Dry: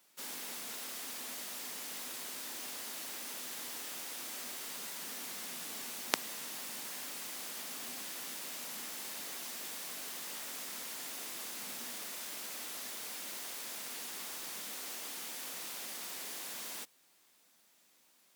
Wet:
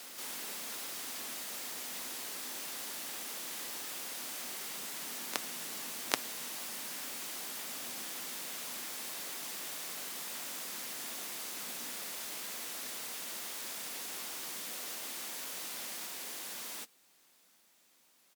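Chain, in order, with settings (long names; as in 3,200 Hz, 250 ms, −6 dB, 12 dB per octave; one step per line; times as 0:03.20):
pitch-shifted copies added −5 semitones −16 dB, +4 semitones −10 dB
backwards echo 781 ms −5.5 dB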